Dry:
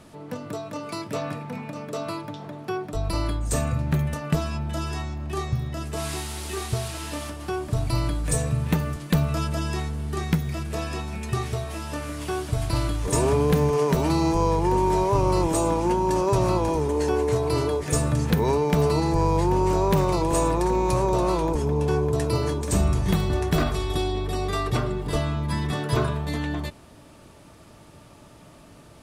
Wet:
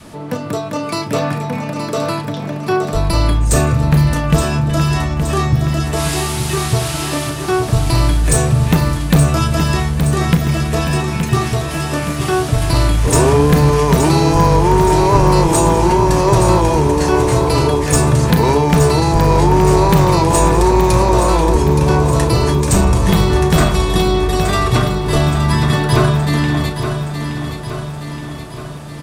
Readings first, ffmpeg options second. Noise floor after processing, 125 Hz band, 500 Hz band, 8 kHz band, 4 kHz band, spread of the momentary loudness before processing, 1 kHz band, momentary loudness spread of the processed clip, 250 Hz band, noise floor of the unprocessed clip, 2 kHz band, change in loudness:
-26 dBFS, +11.5 dB, +9.0 dB, +12.0 dB, +12.5 dB, 10 LU, +11.0 dB, 10 LU, +10.5 dB, -49 dBFS, +12.5 dB, +10.5 dB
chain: -filter_complex "[0:a]adynamicequalizer=threshold=0.0178:dfrequency=440:dqfactor=1.1:tfrequency=440:tqfactor=1.1:attack=5:release=100:ratio=0.375:range=2:mode=cutabove:tftype=bell,aeval=exprs='0.376*sin(PI/2*1.78*val(0)/0.376)':c=same,asplit=2[s0][s1];[s1]adelay=35,volume=0.282[s2];[s0][s2]amix=inputs=2:normalize=0,asplit=2[s3][s4];[s4]aecho=0:1:871|1742|2613|3484|4355|5226|6097:0.398|0.227|0.129|0.0737|0.042|0.024|0.0137[s5];[s3][s5]amix=inputs=2:normalize=0,volume=1.41"

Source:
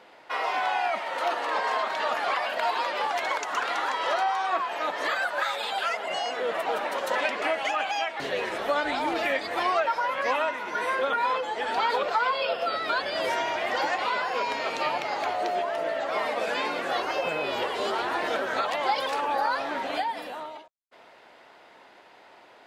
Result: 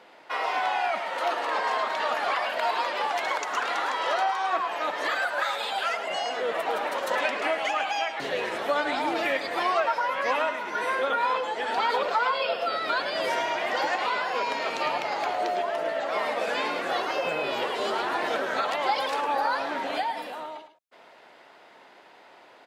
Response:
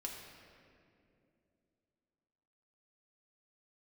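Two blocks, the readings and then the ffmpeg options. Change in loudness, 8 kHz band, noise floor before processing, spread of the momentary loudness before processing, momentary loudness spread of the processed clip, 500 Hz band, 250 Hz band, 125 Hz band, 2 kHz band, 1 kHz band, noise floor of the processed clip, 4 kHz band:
+0.5 dB, +0.5 dB, -53 dBFS, 4 LU, 3 LU, +0.5 dB, +0.5 dB, no reading, +0.5 dB, +0.5 dB, -53 dBFS, +0.5 dB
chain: -af "highpass=110,aecho=1:1:107:0.282"

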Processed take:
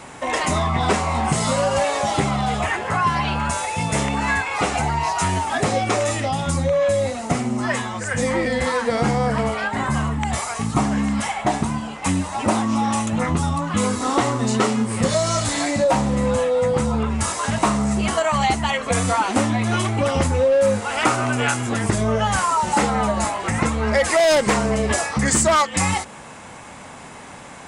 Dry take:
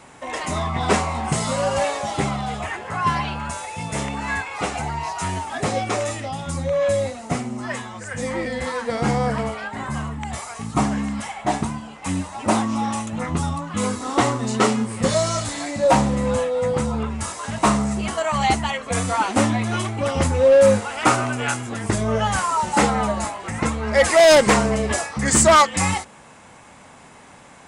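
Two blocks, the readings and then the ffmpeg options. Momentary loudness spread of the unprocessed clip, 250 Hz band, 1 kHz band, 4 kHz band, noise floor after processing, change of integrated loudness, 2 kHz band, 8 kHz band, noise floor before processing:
13 LU, +2.0 dB, +1.0 dB, +1.0 dB, -39 dBFS, +0.5 dB, +1.5 dB, +0.5 dB, -46 dBFS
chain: -af "acompressor=threshold=0.0631:ratio=4,volume=2.24"

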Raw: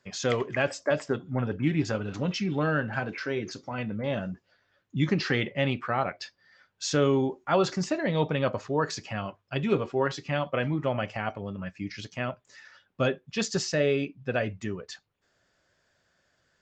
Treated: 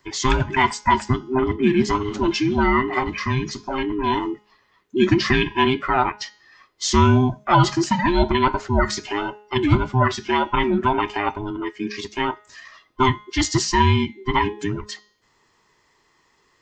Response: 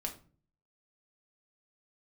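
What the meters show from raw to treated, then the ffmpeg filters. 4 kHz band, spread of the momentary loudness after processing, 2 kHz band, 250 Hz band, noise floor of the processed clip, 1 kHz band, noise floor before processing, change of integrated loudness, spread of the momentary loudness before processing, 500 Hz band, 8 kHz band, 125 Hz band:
+9.5 dB, 11 LU, +7.5 dB, +8.5 dB, -63 dBFS, +14.0 dB, -73 dBFS, +8.5 dB, 11 LU, +4.5 dB, +8.5 dB, +8.0 dB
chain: -af "afftfilt=real='real(if(between(b,1,1008),(2*floor((b-1)/24)+1)*24-b,b),0)':imag='imag(if(between(b,1,1008),(2*floor((b-1)/24)+1)*24-b,b),0)*if(between(b,1,1008),-1,1)':win_size=2048:overlap=0.75,bandreject=f=209.2:t=h:w=4,bandreject=f=418.4:t=h:w=4,bandreject=f=627.6:t=h:w=4,bandreject=f=836.8:t=h:w=4,bandreject=f=1046:t=h:w=4,bandreject=f=1255.2:t=h:w=4,bandreject=f=1464.4:t=h:w=4,bandreject=f=1673.6:t=h:w=4,bandreject=f=1882.8:t=h:w=4,bandreject=f=2092:t=h:w=4,bandreject=f=2301.2:t=h:w=4,bandreject=f=2510.4:t=h:w=4,bandreject=f=2719.6:t=h:w=4,bandreject=f=2928.8:t=h:w=4,bandreject=f=3138:t=h:w=4,bandreject=f=3347.2:t=h:w=4,bandreject=f=3556.4:t=h:w=4,bandreject=f=3765.6:t=h:w=4,bandreject=f=3974.8:t=h:w=4,bandreject=f=4184:t=h:w=4,bandreject=f=4393.2:t=h:w=4,bandreject=f=4602.4:t=h:w=4,bandreject=f=4811.6:t=h:w=4,bandreject=f=5020.8:t=h:w=4,bandreject=f=5230:t=h:w=4,bandreject=f=5439.2:t=h:w=4,bandreject=f=5648.4:t=h:w=4,bandreject=f=5857.6:t=h:w=4,bandreject=f=6066.8:t=h:w=4,bandreject=f=6276:t=h:w=4,bandreject=f=6485.2:t=h:w=4,bandreject=f=6694.4:t=h:w=4,volume=2.66"

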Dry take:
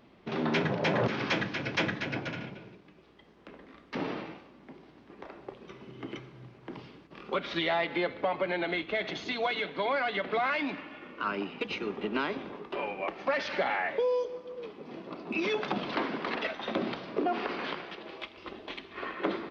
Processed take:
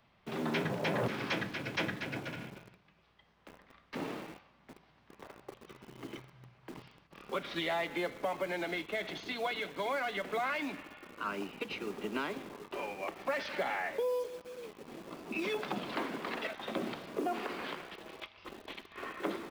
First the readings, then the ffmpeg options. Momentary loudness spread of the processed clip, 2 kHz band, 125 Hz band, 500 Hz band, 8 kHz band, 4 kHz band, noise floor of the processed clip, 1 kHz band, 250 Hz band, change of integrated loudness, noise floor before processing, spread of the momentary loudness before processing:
17 LU, -5.0 dB, -5.0 dB, -5.0 dB, no reading, -5.0 dB, -67 dBFS, -5.0 dB, -5.0 dB, -5.0 dB, -57 dBFS, 17 LU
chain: -filter_complex "[0:a]acrossover=split=190|550|1400[s0][s1][s2][s3];[s1]acrusher=bits=7:mix=0:aa=0.000001[s4];[s0][s4][s2][s3]amix=inputs=4:normalize=0,volume=0.562"

